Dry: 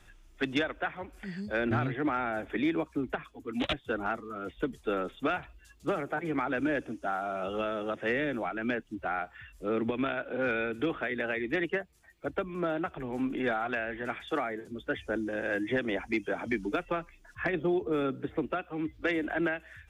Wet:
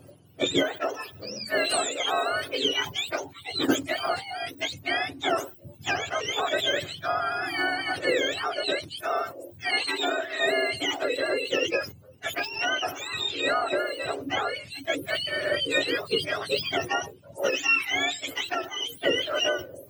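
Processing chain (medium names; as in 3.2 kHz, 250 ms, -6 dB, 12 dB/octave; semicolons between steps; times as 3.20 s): spectrum inverted on a logarithmic axis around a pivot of 980 Hz; decay stretcher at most 140 dB/s; trim +7.5 dB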